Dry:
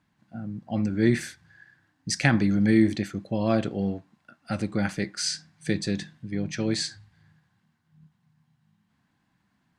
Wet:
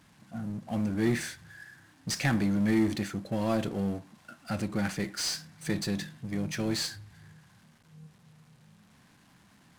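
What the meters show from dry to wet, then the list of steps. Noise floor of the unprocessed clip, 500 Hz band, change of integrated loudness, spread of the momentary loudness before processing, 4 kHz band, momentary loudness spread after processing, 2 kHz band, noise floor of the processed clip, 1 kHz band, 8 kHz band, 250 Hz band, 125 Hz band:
−72 dBFS, −5.0 dB, −4.5 dB, 15 LU, −2.5 dB, 17 LU, −4.5 dB, −61 dBFS, −3.0 dB, −2.5 dB, −4.5 dB, −4.5 dB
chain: variable-slope delta modulation 64 kbit/s
power curve on the samples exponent 0.7
level −8 dB

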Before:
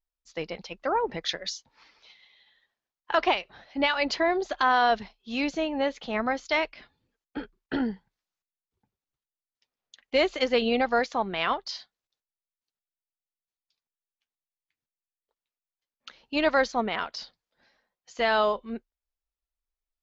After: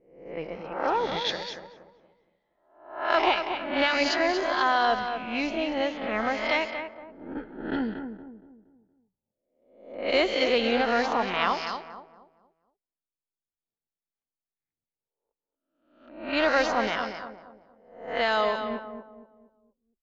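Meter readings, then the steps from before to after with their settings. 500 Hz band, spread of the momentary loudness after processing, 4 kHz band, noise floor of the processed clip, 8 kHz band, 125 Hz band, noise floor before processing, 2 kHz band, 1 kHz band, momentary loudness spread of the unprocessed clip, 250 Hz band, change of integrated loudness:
+0.5 dB, 17 LU, +1.5 dB, below −85 dBFS, can't be measured, +0.5 dB, below −85 dBFS, +1.5 dB, +1.0 dB, 16 LU, 0.0 dB, +0.5 dB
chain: peak hold with a rise ahead of every peak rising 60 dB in 0.73 s
repeating echo 234 ms, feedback 40%, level −8 dB
low-pass that shuts in the quiet parts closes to 580 Hz, open at −18 dBFS
level −2 dB

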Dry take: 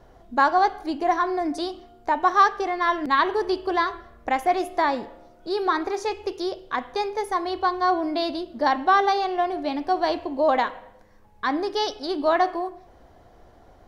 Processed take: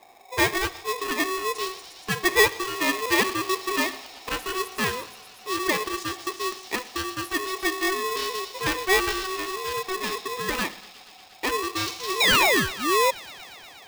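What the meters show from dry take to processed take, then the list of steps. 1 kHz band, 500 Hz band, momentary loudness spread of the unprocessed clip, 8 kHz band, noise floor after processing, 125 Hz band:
−6.5 dB, −2.5 dB, 10 LU, +16.5 dB, −48 dBFS, can't be measured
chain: sound drawn into the spectrogram fall, 0:12.20–0:13.11, 210–3,300 Hz −19 dBFS
Butterworth band-reject 640 Hz, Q 1.1
delay with a high-pass on its return 119 ms, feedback 85%, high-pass 4,500 Hz, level −4.5 dB
ring modulator with a square carrier 750 Hz

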